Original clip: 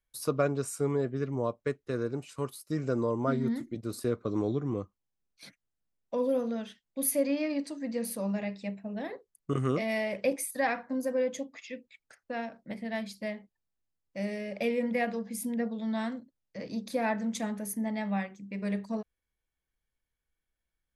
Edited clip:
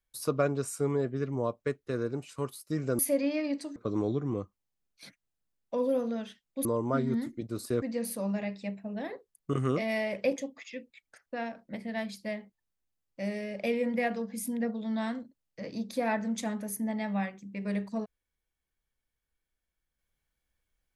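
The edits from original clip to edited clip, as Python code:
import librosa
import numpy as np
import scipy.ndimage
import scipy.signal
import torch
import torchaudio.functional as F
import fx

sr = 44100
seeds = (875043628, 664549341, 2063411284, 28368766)

y = fx.edit(x, sr, fx.swap(start_s=2.99, length_s=1.17, other_s=7.05, other_length_s=0.77),
    fx.cut(start_s=10.38, length_s=0.97), tone=tone)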